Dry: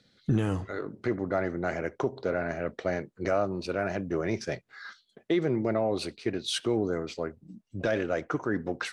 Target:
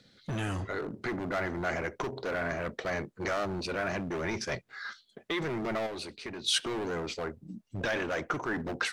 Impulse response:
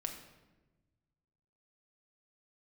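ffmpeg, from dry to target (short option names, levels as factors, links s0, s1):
-filter_complex "[0:a]acrossover=split=1200[s0][s1];[s0]volume=59.6,asoftclip=hard,volume=0.0168[s2];[s2][s1]amix=inputs=2:normalize=0,asettb=1/sr,asplit=3[s3][s4][s5];[s3]atrim=end=5.864[s6];[s4]atrim=start=5.86:end=6.47,asetpts=PTS-STARTPTS,afade=t=in:d=0.004:c=qsin,afade=t=out:st=0.606:d=0.004:c=qsin,acompressor=threshold=0.00891:ratio=6[s7];[s5]atrim=start=6.466[s8];[s6][s7]acrossfade=d=0.004:c1=hsin:c2=qsin[s9];[s9][s8]acrossfade=d=0.004:c1=qsin:c2=hsin,volume=1.5"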